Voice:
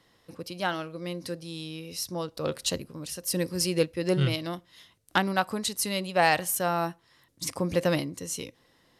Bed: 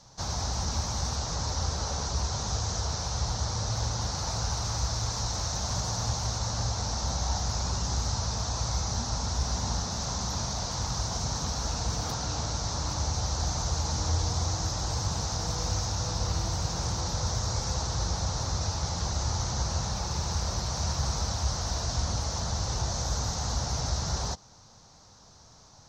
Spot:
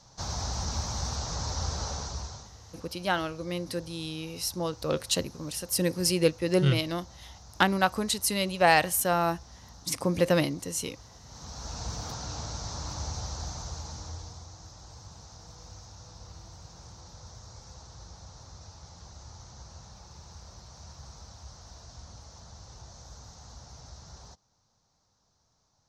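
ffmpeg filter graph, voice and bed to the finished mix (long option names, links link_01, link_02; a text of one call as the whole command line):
ffmpeg -i stem1.wav -i stem2.wav -filter_complex "[0:a]adelay=2450,volume=1.5dB[link_01];[1:a]volume=13dB,afade=type=out:start_time=1.84:duration=0.67:silence=0.11885,afade=type=in:start_time=11.25:duration=0.6:silence=0.177828,afade=type=out:start_time=13.1:duration=1.36:silence=0.237137[link_02];[link_01][link_02]amix=inputs=2:normalize=0" out.wav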